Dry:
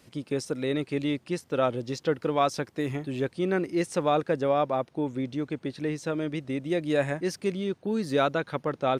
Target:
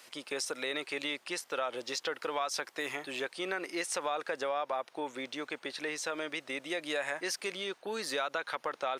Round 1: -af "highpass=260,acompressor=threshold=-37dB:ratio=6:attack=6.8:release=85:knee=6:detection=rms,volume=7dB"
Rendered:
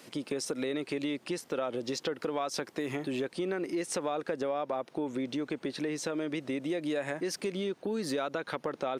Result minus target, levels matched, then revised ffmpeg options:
250 Hz band +8.0 dB
-af "highpass=840,acompressor=threshold=-37dB:ratio=6:attack=6.8:release=85:knee=6:detection=rms,volume=7dB"

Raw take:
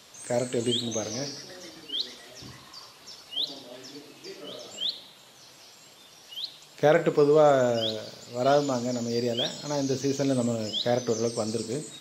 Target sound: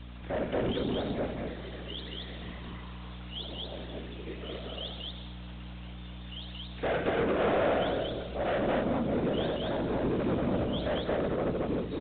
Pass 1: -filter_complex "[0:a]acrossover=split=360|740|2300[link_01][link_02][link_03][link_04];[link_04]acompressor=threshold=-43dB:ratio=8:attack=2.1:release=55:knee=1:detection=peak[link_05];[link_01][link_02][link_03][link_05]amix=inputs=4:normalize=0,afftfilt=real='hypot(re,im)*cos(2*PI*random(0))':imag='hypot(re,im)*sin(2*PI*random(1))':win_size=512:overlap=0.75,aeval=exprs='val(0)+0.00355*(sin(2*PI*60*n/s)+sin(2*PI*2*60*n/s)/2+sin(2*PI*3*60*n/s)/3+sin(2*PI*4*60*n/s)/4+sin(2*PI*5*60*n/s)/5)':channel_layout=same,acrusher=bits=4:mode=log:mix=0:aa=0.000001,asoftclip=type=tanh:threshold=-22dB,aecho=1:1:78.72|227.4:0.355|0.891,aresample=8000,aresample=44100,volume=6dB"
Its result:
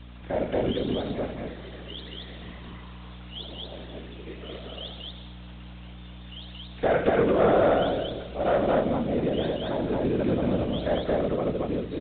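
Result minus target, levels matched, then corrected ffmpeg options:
soft clipping: distortion −9 dB
-filter_complex "[0:a]acrossover=split=360|740|2300[link_01][link_02][link_03][link_04];[link_04]acompressor=threshold=-43dB:ratio=8:attack=2.1:release=55:knee=1:detection=peak[link_05];[link_01][link_02][link_03][link_05]amix=inputs=4:normalize=0,afftfilt=real='hypot(re,im)*cos(2*PI*random(0))':imag='hypot(re,im)*sin(2*PI*random(1))':win_size=512:overlap=0.75,aeval=exprs='val(0)+0.00355*(sin(2*PI*60*n/s)+sin(2*PI*2*60*n/s)/2+sin(2*PI*3*60*n/s)/3+sin(2*PI*4*60*n/s)/4+sin(2*PI*5*60*n/s)/5)':channel_layout=same,acrusher=bits=4:mode=log:mix=0:aa=0.000001,asoftclip=type=tanh:threshold=-33.5dB,aecho=1:1:78.72|227.4:0.355|0.891,aresample=8000,aresample=44100,volume=6dB"

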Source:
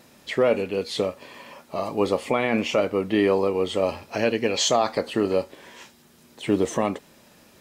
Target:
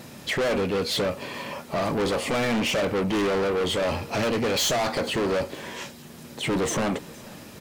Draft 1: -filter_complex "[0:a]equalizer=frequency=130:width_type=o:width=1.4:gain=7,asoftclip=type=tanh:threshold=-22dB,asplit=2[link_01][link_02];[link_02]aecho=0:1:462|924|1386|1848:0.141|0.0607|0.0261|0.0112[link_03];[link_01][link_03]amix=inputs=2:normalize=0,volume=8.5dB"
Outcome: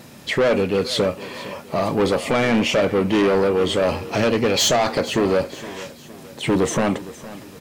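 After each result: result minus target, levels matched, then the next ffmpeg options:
echo-to-direct +6 dB; soft clipping: distortion −5 dB
-filter_complex "[0:a]equalizer=frequency=130:width_type=o:width=1.4:gain=7,asoftclip=type=tanh:threshold=-22dB,asplit=2[link_01][link_02];[link_02]aecho=0:1:462|924|1386:0.0708|0.0304|0.0131[link_03];[link_01][link_03]amix=inputs=2:normalize=0,volume=8.5dB"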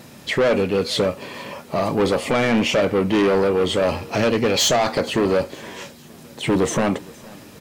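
soft clipping: distortion −5 dB
-filter_complex "[0:a]equalizer=frequency=130:width_type=o:width=1.4:gain=7,asoftclip=type=tanh:threshold=-30.5dB,asplit=2[link_01][link_02];[link_02]aecho=0:1:462|924|1386:0.0708|0.0304|0.0131[link_03];[link_01][link_03]amix=inputs=2:normalize=0,volume=8.5dB"

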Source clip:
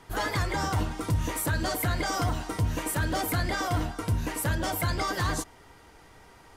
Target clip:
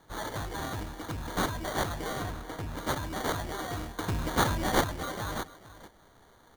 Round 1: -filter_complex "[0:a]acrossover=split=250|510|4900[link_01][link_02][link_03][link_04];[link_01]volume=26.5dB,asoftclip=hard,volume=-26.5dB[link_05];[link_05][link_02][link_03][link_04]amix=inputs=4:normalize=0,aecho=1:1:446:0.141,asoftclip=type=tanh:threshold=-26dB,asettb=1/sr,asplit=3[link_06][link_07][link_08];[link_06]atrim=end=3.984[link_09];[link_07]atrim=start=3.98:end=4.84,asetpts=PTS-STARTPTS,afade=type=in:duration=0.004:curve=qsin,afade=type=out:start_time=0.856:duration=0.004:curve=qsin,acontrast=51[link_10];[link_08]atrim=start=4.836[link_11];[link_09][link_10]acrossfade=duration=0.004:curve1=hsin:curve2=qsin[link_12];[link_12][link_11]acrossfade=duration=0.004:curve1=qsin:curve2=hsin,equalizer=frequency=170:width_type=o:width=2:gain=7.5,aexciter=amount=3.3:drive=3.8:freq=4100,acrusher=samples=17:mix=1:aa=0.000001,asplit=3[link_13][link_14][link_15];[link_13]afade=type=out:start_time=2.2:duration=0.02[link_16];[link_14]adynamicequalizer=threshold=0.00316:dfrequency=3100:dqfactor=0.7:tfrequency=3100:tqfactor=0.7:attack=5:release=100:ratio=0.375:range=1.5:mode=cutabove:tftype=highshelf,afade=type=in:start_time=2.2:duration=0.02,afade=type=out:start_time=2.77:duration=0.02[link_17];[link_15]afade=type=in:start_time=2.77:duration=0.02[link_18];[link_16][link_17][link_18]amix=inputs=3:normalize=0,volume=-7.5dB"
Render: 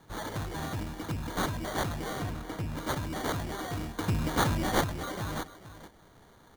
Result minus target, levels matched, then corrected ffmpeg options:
soft clipping: distortion +12 dB; 125 Hz band +2.5 dB
-filter_complex "[0:a]acrossover=split=250|510|4900[link_01][link_02][link_03][link_04];[link_01]volume=26.5dB,asoftclip=hard,volume=-26.5dB[link_05];[link_05][link_02][link_03][link_04]amix=inputs=4:normalize=0,aecho=1:1:446:0.141,asoftclip=type=tanh:threshold=-17.5dB,asettb=1/sr,asplit=3[link_06][link_07][link_08];[link_06]atrim=end=3.984[link_09];[link_07]atrim=start=3.98:end=4.84,asetpts=PTS-STARTPTS,afade=type=in:duration=0.004:curve=qsin,afade=type=out:start_time=0.856:duration=0.004:curve=qsin,acontrast=51[link_10];[link_08]atrim=start=4.836[link_11];[link_09][link_10]acrossfade=duration=0.004:curve1=hsin:curve2=qsin[link_12];[link_12][link_11]acrossfade=duration=0.004:curve1=qsin:curve2=hsin,aexciter=amount=3.3:drive=3.8:freq=4100,acrusher=samples=17:mix=1:aa=0.000001,asplit=3[link_13][link_14][link_15];[link_13]afade=type=out:start_time=2.2:duration=0.02[link_16];[link_14]adynamicequalizer=threshold=0.00316:dfrequency=3100:dqfactor=0.7:tfrequency=3100:tqfactor=0.7:attack=5:release=100:ratio=0.375:range=1.5:mode=cutabove:tftype=highshelf,afade=type=in:start_time=2.2:duration=0.02,afade=type=out:start_time=2.77:duration=0.02[link_17];[link_15]afade=type=in:start_time=2.77:duration=0.02[link_18];[link_16][link_17][link_18]amix=inputs=3:normalize=0,volume=-7.5dB"

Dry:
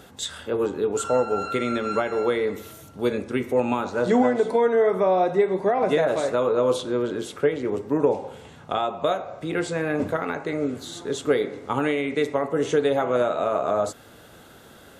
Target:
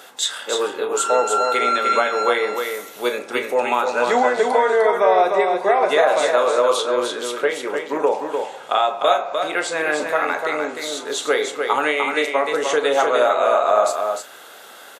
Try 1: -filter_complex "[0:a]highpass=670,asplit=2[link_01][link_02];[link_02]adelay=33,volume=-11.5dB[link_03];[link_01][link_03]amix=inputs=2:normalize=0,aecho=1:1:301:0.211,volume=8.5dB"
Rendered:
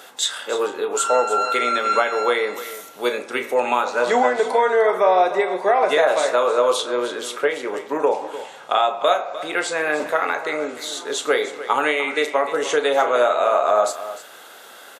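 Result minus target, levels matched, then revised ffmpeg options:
echo-to-direct −8.5 dB
-filter_complex "[0:a]highpass=670,asplit=2[link_01][link_02];[link_02]adelay=33,volume=-11.5dB[link_03];[link_01][link_03]amix=inputs=2:normalize=0,aecho=1:1:301:0.562,volume=8.5dB"

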